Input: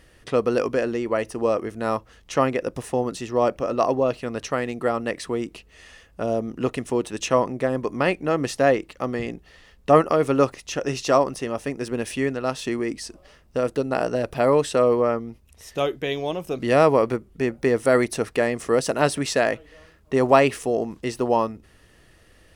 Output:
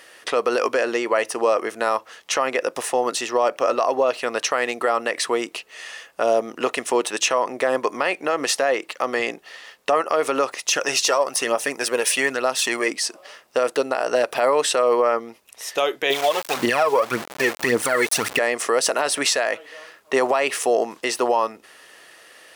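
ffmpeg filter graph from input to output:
-filter_complex "[0:a]asettb=1/sr,asplit=3[s0][s1][s2];[s0]atrim=end=10.664[s3];[s1]atrim=start=10.66:end=12.88,asetpts=PTS-STARTPTS,afade=t=in:d=0.004:c=qsin,afade=t=out:st=2.216:d=0.004:c=qsin,highshelf=f=7300:g=7.5,aphaser=in_gain=1:out_gain=1:delay=2.3:decay=0.41:speed=1.1:type=triangular[s4];[s2]atrim=start=12.876[s5];[s3][s4]acrossfade=d=0.004:c1=hsin:c2=qsin[s6];[s6][s5]acrossfade=d=0.004:c1=qsin:c2=hsin,asettb=1/sr,asplit=3[s7][s8][s9];[s7]atrim=end=16.104[s10];[s8]atrim=start=16.1:end=18.39,asetpts=PTS-STARTPTS,afade=t=in:d=0.004:c=qsin,afade=t=out:st=2.286:d=0.004:c=qsin,asubboost=boost=8:cutoff=240,aphaser=in_gain=1:out_gain=1:delay=2.4:decay=0.71:speed=1.8:type=triangular,aeval=exprs='val(0)*gte(abs(val(0)),0.0266)':c=same[s11];[s9]atrim=start=18.386[s12];[s10][s11]acrossfade=d=0.004:c1=hsin:c2=qsin[s13];[s13][s12]acrossfade=d=0.004:c1=qsin:c2=hsin,highpass=620,acompressor=threshold=0.0708:ratio=6,alimiter=level_in=9.44:limit=0.891:release=50:level=0:latency=1,volume=0.398"

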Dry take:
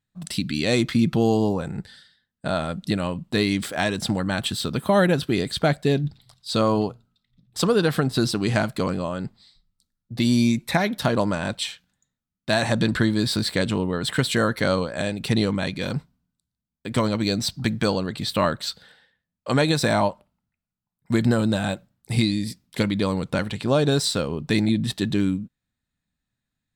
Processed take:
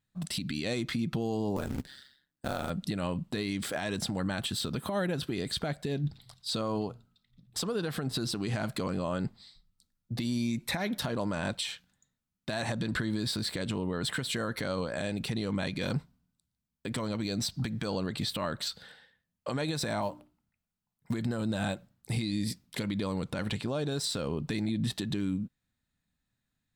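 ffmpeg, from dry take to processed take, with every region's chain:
-filter_complex "[0:a]asettb=1/sr,asplit=3[s0][s1][s2];[s0]atrim=end=1.564[s3];[s1]atrim=start=1.56:end=2.7,asetpts=PTS-STARTPTS,afade=t=in:d=0.004:c=qsin,afade=t=out:st=1.136:d=0.004:c=qsin,highpass=43,aeval=exprs='val(0)*sin(2*PI*68*n/s)':c=same,acrusher=bits=4:mode=log:mix=0:aa=0.000001[s4];[s2]atrim=start=2.696[s5];[s3][s4]acrossfade=d=0.004:c1=hsin:c2=qsin[s6];[s6][s5]acrossfade=d=0.004:c1=qsin:c2=hsin,asettb=1/sr,asplit=3[s7][s8][s9];[s7]atrim=end=20.024[s10];[s8]atrim=start=20.02:end=21.14,asetpts=PTS-STARTPTS,afade=t=in:d=0.004:c=qsin,afade=t=out:st=1.116:d=0.004:c=qsin,bandreject=f=60:t=h:w=6,bandreject=f=120:t=h:w=6,bandreject=f=180:t=h:w=6,bandreject=f=240:t=h:w=6,bandreject=f=300:t=h:w=6,bandreject=f=360:t=h:w=6,acrusher=bits=8:mode=log:mix=0:aa=0.000001[s11];[s9]atrim=start=21.136[s12];[s10][s11]acrossfade=d=0.004:c1=hsin:c2=qsin[s13];[s13][s12]acrossfade=d=0.004:c1=qsin:c2=hsin,acompressor=threshold=0.0708:ratio=20,alimiter=limit=0.075:level=0:latency=1:release=131"

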